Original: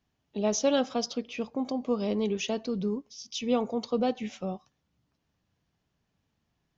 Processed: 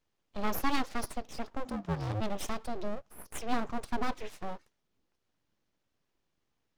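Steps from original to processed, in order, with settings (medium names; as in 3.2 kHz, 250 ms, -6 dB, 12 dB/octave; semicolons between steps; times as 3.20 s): full-wave rectifier; 1.64–2.20 s: ring modulator 270 Hz -> 100 Hz; trim -2 dB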